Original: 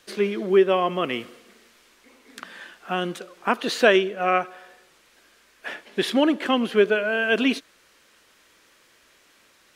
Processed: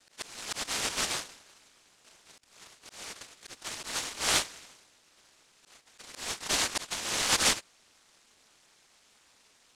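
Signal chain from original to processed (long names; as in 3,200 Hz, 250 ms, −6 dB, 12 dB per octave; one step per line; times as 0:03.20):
cochlear-implant simulation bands 1
volume swells 537 ms
ring modulation 110 Hz
level −1.5 dB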